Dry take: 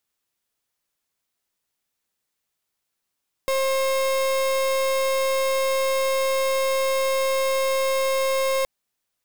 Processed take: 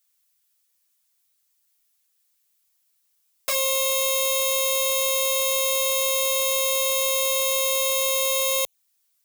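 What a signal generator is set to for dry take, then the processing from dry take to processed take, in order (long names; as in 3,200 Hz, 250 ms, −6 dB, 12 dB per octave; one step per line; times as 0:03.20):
pulse wave 534 Hz, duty 36% −22 dBFS 5.17 s
spectral tilt +4 dB per octave
flanger swept by the level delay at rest 7.8 ms, full sweep at −19 dBFS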